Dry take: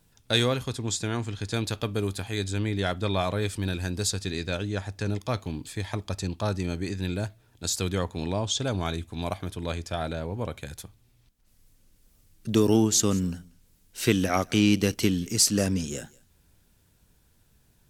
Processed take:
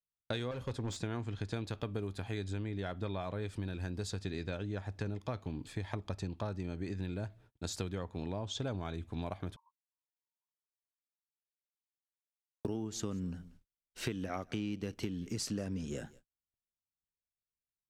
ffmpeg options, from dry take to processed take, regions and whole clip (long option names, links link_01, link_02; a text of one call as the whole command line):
ffmpeg -i in.wav -filter_complex "[0:a]asettb=1/sr,asplit=3[link_01][link_02][link_03];[link_01]atrim=end=0.514[link_04];[link_02]atrim=start=0.51:end=0.97,asetpts=PTS-STARTPTS,afade=type=in:duration=0.004:curve=qsin,afade=type=out:start_time=0.456:duration=0.004:curve=qsin,equalizer=frequency=540:width=5.2:gain=10,asoftclip=type=hard:threshold=-26.5dB[link_05];[link_03]atrim=start=0.966[link_06];[link_04][link_05]acrossfade=duration=0.004:curve1=hsin:curve2=qsin[link_07];[link_07][link_06]acrossfade=duration=0.004:curve1=qsin:curve2=hsin,asettb=1/sr,asplit=3[link_08][link_09][link_10];[link_08]atrim=end=9.564[link_11];[link_09]atrim=start=9.56:end=12.65,asetpts=PTS-STARTPTS,afade=type=in:duration=0.004:curve=qsin,afade=type=out:start_time=3.086:duration=0.004:curve=qsin,acompressor=threshold=-43dB:ratio=10:attack=3.2:release=140:knee=1:detection=peak,asuperpass=centerf=1000:order=20:qfactor=4[link_12];[link_10]atrim=start=12.646[link_13];[link_11][link_12]acrossfade=duration=0.004:curve1=hsin:curve2=qsin[link_14];[link_14][link_13]acrossfade=duration=0.004:curve1=qsin:curve2=hsin,lowpass=frequency=1900:poles=1,agate=range=-42dB:threshold=-54dB:ratio=16:detection=peak,acompressor=threshold=-32dB:ratio=12,volume=-1.5dB" out.wav